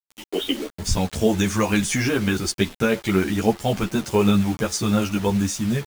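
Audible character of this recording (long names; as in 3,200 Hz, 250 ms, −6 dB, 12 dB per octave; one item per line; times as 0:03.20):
a quantiser's noise floor 6 bits, dither none
a shimmering, thickened sound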